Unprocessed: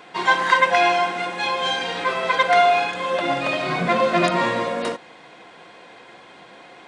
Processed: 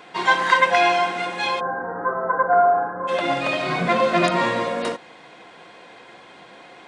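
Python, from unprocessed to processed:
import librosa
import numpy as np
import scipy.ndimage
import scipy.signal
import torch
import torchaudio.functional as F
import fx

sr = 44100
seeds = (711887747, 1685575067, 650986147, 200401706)

y = fx.steep_lowpass(x, sr, hz=1600.0, slope=72, at=(1.59, 3.07), fade=0.02)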